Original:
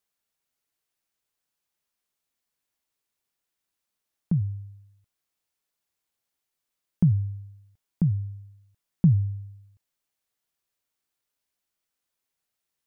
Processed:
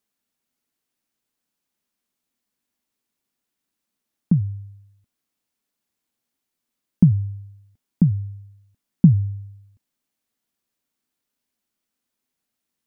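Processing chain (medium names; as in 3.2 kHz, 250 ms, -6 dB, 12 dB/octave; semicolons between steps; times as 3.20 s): peaking EQ 240 Hz +12 dB 0.84 oct; trim +1.5 dB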